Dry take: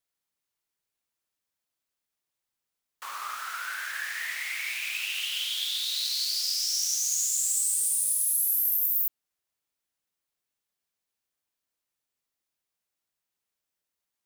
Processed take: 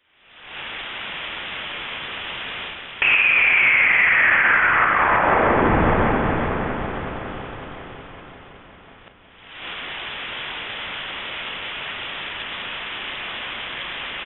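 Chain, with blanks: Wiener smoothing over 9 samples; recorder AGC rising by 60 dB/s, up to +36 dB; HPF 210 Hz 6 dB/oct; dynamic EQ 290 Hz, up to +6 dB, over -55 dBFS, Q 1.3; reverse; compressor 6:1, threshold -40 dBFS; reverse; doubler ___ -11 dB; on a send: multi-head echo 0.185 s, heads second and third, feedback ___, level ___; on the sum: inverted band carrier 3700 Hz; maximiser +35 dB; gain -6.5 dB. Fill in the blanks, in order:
34 ms, 52%, -9 dB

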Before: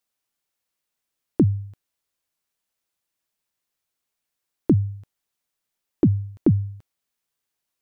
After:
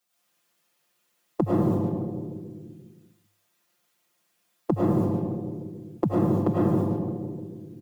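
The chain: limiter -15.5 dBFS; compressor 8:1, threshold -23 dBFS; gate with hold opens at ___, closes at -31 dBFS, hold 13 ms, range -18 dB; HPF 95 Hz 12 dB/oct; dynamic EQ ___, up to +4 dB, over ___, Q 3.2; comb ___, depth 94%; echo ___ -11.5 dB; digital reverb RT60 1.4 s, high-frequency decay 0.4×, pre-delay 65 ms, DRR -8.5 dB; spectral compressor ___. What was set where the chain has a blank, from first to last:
-29 dBFS, 810 Hz, -55 dBFS, 5.7 ms, 0.139 s, 2:1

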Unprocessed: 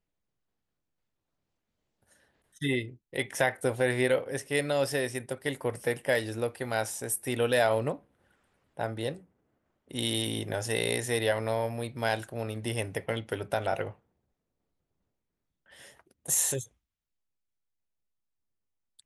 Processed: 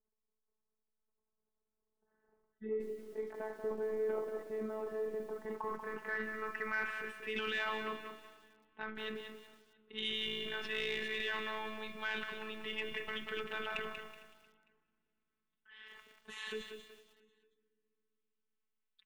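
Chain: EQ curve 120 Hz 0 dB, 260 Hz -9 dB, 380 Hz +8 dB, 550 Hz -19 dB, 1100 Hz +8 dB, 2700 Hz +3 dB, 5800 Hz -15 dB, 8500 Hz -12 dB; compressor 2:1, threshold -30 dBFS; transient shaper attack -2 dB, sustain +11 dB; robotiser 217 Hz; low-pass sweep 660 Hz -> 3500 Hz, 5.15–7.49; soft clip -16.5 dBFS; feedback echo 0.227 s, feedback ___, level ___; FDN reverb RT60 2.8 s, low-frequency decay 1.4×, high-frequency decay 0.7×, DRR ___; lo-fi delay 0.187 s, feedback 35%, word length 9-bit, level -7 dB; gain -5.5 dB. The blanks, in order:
52%, -18 dB, 19 dB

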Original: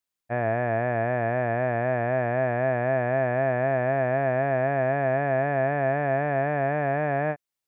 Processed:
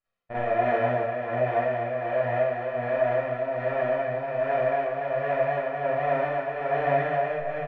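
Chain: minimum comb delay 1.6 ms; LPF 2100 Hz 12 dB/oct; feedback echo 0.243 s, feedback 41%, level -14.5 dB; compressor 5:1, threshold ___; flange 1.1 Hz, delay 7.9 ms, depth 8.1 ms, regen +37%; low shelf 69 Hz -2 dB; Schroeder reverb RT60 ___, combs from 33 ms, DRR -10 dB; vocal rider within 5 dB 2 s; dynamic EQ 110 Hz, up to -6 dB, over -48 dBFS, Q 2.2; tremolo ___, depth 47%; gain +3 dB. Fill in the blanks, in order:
-31 dBFS, 0.52 s, 1.3 Hz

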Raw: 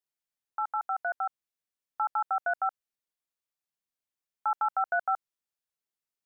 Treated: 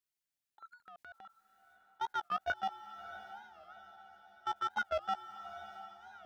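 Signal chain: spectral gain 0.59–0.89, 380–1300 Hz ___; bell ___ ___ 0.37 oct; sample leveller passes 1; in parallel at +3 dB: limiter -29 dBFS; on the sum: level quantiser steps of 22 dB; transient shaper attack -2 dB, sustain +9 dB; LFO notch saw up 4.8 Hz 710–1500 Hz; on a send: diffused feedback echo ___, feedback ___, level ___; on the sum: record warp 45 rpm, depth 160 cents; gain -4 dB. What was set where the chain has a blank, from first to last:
-28 dB, 480 Hz, -9 dB, 0.656 s, 49%, -12 dB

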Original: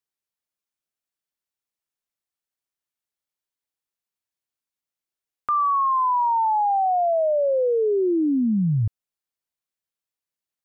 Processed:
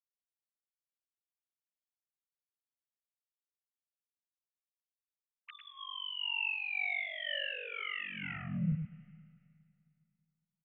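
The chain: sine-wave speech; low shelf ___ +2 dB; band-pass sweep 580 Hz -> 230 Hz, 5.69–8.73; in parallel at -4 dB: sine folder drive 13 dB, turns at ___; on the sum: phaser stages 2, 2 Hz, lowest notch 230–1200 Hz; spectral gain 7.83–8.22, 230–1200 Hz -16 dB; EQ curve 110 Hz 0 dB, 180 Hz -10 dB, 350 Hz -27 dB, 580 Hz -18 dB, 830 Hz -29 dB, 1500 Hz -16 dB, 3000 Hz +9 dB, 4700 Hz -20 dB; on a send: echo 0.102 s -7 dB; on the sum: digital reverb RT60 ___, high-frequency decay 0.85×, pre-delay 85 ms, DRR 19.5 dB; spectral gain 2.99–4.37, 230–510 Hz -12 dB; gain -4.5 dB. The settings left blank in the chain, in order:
490 Hz, -14 dBFS, 2.5 s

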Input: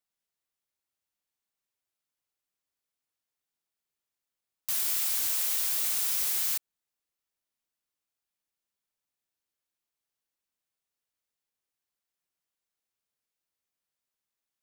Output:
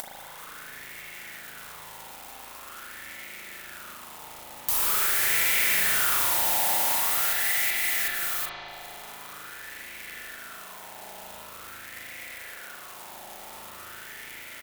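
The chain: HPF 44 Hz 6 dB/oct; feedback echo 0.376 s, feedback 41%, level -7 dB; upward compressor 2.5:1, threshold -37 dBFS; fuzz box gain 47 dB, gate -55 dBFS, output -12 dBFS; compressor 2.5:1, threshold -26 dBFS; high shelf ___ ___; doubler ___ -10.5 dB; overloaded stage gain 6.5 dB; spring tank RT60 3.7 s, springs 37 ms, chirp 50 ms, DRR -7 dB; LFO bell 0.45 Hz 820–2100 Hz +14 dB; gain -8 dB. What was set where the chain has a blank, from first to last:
7200 Hz, +7 dB, 37 ms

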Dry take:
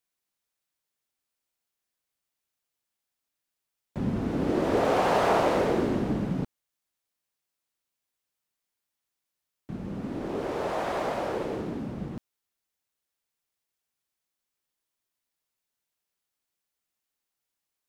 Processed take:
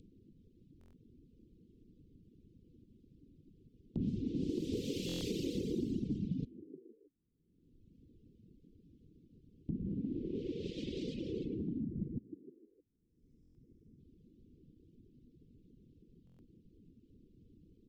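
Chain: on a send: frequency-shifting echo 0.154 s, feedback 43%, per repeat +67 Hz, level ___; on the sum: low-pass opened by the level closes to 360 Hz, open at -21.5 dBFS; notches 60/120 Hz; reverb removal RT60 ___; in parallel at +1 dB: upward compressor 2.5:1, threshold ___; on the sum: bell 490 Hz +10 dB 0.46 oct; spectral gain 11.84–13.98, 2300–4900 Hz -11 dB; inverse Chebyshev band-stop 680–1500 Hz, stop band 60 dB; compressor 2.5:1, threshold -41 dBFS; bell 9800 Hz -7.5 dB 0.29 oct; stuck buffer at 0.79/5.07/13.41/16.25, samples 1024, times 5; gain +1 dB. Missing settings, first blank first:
-14 dB, 1.1 s, -30 dBFS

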